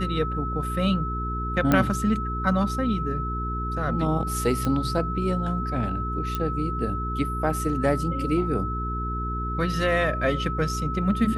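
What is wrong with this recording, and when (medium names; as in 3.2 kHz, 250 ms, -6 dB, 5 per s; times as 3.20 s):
hum 60 Hz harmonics 7 -30 dBFS
whine 1.3 kHz -30 dBFS
1.72 s: pop -8 dBFS
4.65 s: pop -14 dBFS
6.35 s: pop -14 dBFS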